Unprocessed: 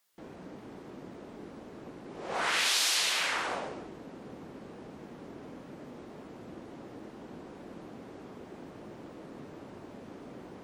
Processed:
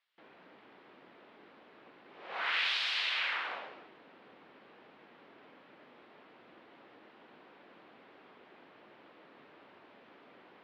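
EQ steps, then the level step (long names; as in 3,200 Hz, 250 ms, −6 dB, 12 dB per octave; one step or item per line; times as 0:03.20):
resonant band-pass 3,600 Hz, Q 0.95
high-frequency loss of the air 410 metres
+6.5 dB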